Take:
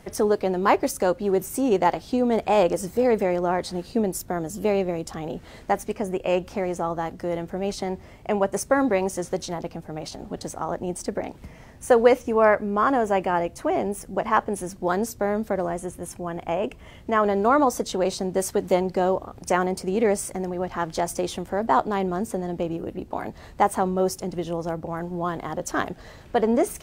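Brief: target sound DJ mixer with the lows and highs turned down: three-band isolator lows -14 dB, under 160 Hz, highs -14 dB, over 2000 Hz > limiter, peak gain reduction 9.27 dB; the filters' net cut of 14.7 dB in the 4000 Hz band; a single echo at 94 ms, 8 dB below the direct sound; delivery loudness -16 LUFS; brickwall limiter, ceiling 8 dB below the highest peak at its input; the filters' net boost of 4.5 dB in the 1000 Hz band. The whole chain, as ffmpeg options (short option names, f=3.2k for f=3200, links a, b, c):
-filter_complex "[0:a]equalizer=f=1k:t=o:g=6.5,equalizer=f=4k:t=o:g=-5.5,alimiter=limit=-10dB:level=0:latency=1,acrossover=split=160 2000:gain=0.2 1 0.2[a][b][c];[a][b][c]amix=inputs=3:normalize=0,aecho=1:1:94:0.398,volume=11.5dB,alimiter=limit=-5dB:level=0:latency=1"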